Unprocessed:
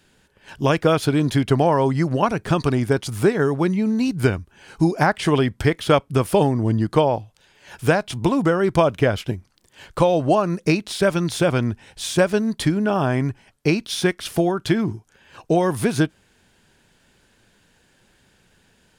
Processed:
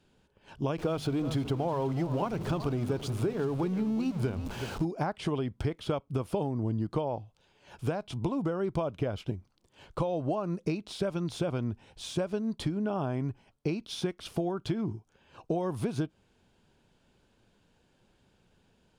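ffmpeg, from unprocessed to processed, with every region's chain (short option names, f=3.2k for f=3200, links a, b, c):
-filter_complex "[0:a]asettb=1/sr,asplit=3[a][b][c];[a]atrim=end=0.784[d];[b]atrim=start=0.78:end=4.85,asetpts=PTS-STARTPTS,afade=t=in:d=0.004:c=qsin,afade=t=out:st=4.066:d=0.004:c=qsin,aeval=exprs='val(0)+0.5*0.0562*sgn(val(0))':c=same,bandreject=f=50:t=h:w=6,bandreject=f=100:t=h:w=6,bandreject=f=150:t=h:w=6,bandreject=f=200:t=h:w=6,bandreject=f=250:t=h:w=6,aecho=1:1:372:0.188,atrim=end_sample=179487[e];[c]atrim=start=4.846[f];[d][e]acrossfade=d=0.004:c1=hsin:c2=qsin[g];[g][f]acrossfade=d=0.004:c1=qsin:c2=hsin,lowpass=f=2.6k:p=1,equalizer=f=1.8k:t=o:w=0.63:g=-9,acompressor=threshold=-21dB:ratio=6,volume=-6dB"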